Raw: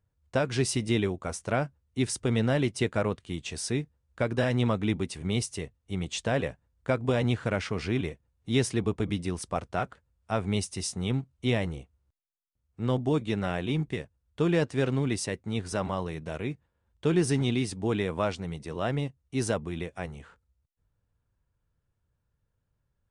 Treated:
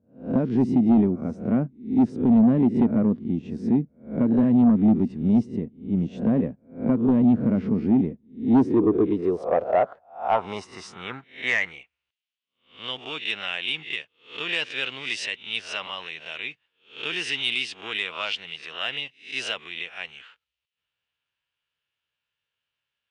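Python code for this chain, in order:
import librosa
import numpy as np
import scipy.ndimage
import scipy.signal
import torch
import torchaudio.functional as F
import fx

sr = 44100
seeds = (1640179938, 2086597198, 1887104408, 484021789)

p1 = fx.spec_swells(x, sr, rise_s=0.38)
p2 = fx.high_shelf(p1, sr, hz=7300.0, db=8.5)
p3 = fx.filter_sweep_bandpass(p2, sr, from_hz=230.0, to_hz=2900.0, start_s=8.35, end_s=12.14, q=4.0)
p4 = fx.air_absorb(p3, sr, metres=91.0)
p5 = fx.fold_sine(p4, sr, drive_db=10, ceiling_db=-18.0)
p6 = p4 + (p5 * librosa.db_to_amplitude(-10.0))
y = p6 * librosa.db_to_amplitude(8.5)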